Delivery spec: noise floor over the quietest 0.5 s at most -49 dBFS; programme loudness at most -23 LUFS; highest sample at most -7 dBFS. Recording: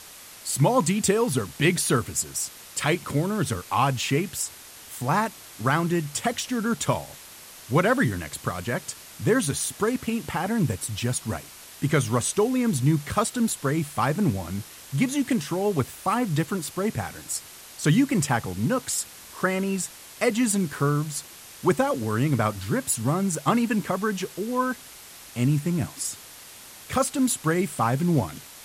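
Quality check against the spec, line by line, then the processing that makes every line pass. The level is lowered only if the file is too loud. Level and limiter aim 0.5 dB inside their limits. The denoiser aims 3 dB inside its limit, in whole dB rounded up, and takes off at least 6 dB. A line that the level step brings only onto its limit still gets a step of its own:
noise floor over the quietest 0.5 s -45 dBFS: fail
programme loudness -25.5 LUFS: pass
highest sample -9.0 dBFS: pass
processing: noise reduction 7 dB, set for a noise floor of -45 dBFS

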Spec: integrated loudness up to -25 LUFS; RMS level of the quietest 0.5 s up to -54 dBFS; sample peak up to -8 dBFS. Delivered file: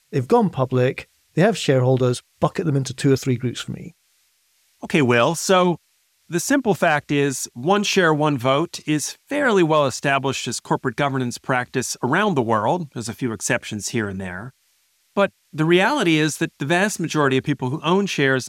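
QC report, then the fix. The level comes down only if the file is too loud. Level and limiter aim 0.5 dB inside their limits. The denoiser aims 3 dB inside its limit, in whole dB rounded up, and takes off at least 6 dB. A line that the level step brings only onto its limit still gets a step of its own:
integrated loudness -20.5 LUFS: fail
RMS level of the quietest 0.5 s -64 dBFS: pass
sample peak -5.5 dBFS: fail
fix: trim -5 dB

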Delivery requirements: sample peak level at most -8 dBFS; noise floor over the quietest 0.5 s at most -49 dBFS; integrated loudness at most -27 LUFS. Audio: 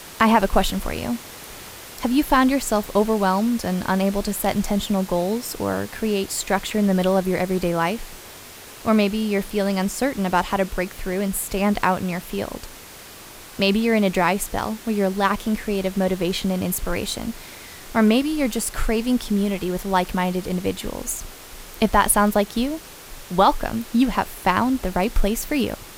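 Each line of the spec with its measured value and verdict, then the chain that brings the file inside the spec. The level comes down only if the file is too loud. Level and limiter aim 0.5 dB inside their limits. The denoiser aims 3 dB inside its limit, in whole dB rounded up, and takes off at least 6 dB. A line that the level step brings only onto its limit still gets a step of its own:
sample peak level -5.0 dBFS: fail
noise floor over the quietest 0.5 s -41 dBFS: fail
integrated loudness -22.0 LUFS: fail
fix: noise reduction 6 dB, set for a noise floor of -41 dBFS; trim -5.5 dB

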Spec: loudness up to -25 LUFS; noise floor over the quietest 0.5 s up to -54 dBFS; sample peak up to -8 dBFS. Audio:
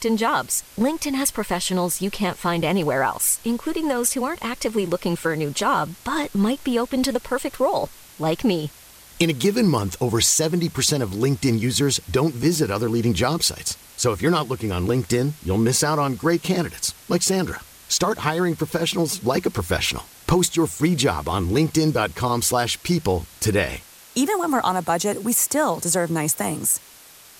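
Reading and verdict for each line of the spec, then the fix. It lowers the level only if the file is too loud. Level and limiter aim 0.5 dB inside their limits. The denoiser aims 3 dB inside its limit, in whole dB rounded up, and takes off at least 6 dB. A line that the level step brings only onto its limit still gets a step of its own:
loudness -22.0 LUFS: fail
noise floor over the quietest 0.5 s -47 dBFS: fail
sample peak -6.0 dBFS: fail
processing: noise reduction 7 dB, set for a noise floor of -47 dBFS; trim -3.5 dB

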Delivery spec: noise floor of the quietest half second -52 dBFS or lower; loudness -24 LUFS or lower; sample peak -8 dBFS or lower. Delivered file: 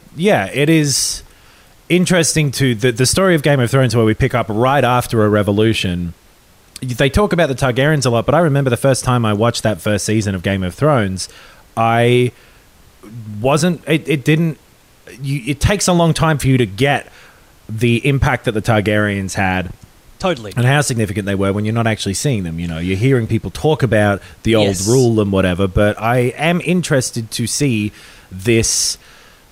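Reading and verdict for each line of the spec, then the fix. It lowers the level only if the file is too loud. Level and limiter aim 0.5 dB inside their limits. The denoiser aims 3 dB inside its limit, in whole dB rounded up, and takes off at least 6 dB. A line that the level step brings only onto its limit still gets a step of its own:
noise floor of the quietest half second -48 dBFS: fail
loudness -15.5 LUFS: fail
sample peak -3.0 dBFS: fail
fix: trim -9 dB

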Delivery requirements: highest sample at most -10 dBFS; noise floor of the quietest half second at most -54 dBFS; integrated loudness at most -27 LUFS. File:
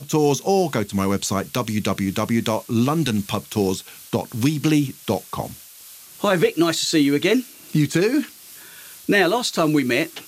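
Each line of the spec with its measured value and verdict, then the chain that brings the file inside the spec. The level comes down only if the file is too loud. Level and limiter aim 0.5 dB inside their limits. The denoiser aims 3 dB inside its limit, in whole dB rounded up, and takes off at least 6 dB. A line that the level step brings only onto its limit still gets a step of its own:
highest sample -6.0 dBFS: fail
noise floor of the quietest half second -43 dBFS: fail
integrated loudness -21.0 LUFS: fail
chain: noise reduction 8 dB, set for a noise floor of -43 dBFS; trim -6.5 dB

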